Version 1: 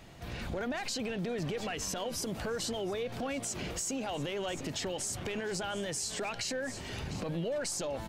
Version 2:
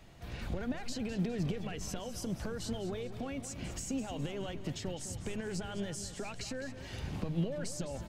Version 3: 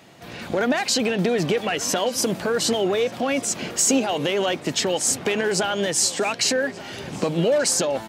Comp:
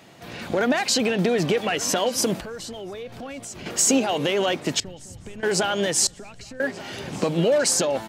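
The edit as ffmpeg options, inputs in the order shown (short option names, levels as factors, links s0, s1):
-filter_complex "[1:a]asplit=2[s0][s1];[2:a]asplit=4[s2][s3][s4][s5];[s2]atrim=end=2.412[s6];[0:a]atrim=start=2.408:end=3.662[s7];[s3]atrim=start=3.658:end=4.802[s8];[s0]atrim=start=4.798:end=5.432[s9];[s4]atrim=start=5.428:end=6.072[s10];[s1]atrim=start=6.068:end=6.602[s11];[s5]atrim=start=6.598[s12];[s6][s7]acrossfade=d=0.004:c1=hsin:c2=hsin[s13];[s13][s8]acrossfade=d=0.004:c1=hsin:c2=hsin[s14];[s14][s9]acrossfade=d=0.004:c1=hsin:c2=hsin[s15];[s15][s10]acrossfade=d=0.004:c1=hsin:c2=hsin[s16];[s16][s11]acrossfade=d=0.004:c1=hsin:c2=hsin[s17];[s17][s12]acrossfade=d=0.004:c1=hsin:c2=hsin"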